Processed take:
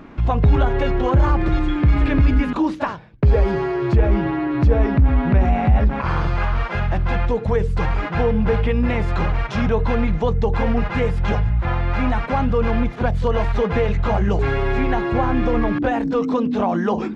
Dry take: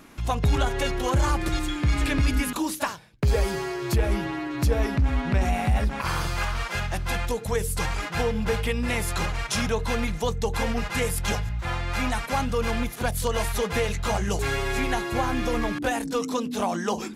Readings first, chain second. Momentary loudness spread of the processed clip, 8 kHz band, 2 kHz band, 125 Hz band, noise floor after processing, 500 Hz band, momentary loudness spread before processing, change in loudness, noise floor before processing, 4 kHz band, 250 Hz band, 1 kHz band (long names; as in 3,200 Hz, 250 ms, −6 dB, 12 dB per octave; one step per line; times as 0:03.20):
5 LU, below −15 dB, +1.5 dB, +8.0 dB, −29 dBFS, +6.5 dB, 4 LU, +6.5 dB, −37 dBFS, −4.5 dB, +8.0 dB, +5.0 dB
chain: in parallel at +2 dB: brickwall limiter −22 dBFS, peak gain reduction 8 dB
on the sum: head-to-tape spacing loss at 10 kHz 39 dB
level +4 dB